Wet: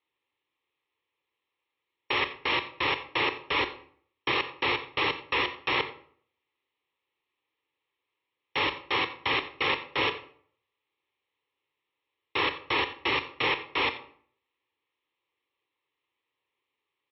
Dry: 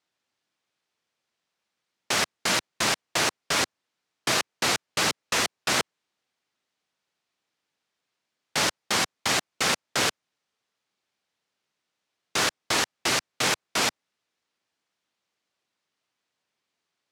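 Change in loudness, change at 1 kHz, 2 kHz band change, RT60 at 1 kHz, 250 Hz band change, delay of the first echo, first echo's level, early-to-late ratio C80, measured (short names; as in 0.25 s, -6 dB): -3.0 dB, -0.5 dB, -1.0 dB, 0.55 s, -2.5 dB, 88 ms, -18.0 dB, 14.5 dB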